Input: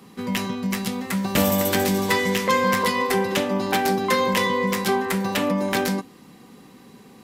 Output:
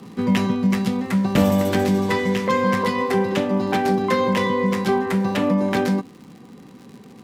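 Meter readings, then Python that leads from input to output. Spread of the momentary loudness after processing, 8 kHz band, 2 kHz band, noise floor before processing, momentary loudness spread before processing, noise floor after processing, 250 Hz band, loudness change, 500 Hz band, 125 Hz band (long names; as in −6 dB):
3 LU, −7.5 dB, −2.0 dB, −49 dBFS, 7 LU, −45 dBFS, +4.5 dB, +1.5 dB, +2.0 dB, +5.0 dB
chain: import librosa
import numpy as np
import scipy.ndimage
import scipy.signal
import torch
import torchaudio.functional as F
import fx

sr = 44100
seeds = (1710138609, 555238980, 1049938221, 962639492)

y = scipy.signal.sosfilt(scipy.signal.butter(2, 81.0, 'highpass', fs=sr, output='sos'), x)
y = fx.tilt_eq(y, sr, slope=-2.0)
y = fx.rider(y, sr, range_db=10, speed_s=2.0)
y = fx.dmg_crackle(y, sr, seeds[0], per_s=120.0, level_db=-35.0)
y = fx.high_shelf(y, sr, hz=12000.0, db=-9.5)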